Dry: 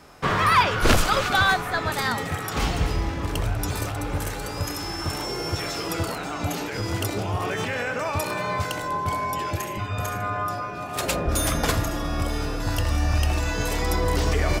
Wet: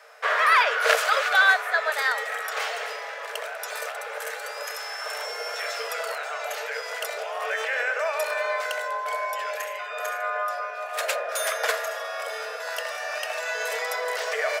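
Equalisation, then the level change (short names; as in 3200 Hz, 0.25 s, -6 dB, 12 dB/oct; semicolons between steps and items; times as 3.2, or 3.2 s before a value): rippled Chebyshev high-pass 440 Hz, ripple 9 dB; +5.0 dB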